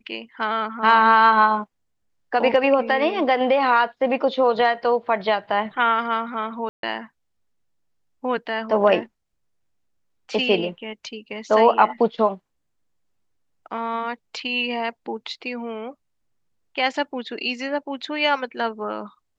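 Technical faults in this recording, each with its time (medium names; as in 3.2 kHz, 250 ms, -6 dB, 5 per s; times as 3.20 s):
6.69–6.83 s: dropout 142 ms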